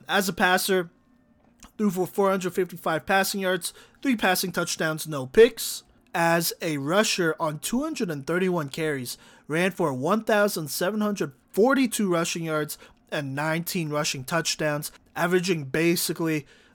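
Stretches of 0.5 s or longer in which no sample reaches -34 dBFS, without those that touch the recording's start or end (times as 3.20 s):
0.84–1.63 s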